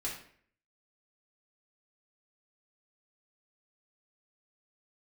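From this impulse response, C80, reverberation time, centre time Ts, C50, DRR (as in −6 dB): 9.0 dB, 0.55 s, 32 ms, 5.0 dB, −5.0 dB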